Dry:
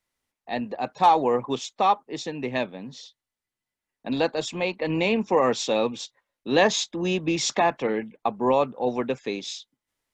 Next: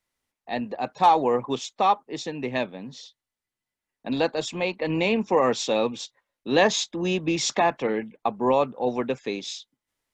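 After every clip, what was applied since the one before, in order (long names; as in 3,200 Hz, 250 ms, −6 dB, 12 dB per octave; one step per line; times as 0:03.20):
no processing that can be heard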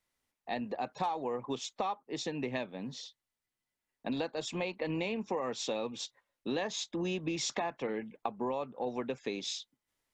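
downward compressor 6 to 1, threshold −30 dBFS, peak gain reduction 16 dB
level −2 dB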